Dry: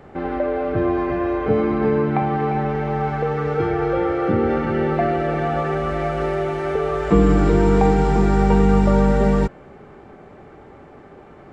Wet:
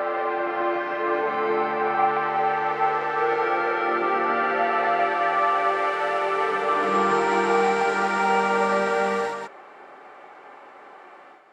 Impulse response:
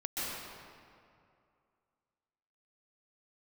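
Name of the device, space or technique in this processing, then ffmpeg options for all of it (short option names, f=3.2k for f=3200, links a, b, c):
ghost voice: -filter_complex "[0:a]areverse[a];[1:a]atrim=start_sample=2205[b];[a][b]afir=irnorm=-1:irlink=0,areverse,highpass=790,equalizer=f=5.9k:t=o:w=0.28:g=-2"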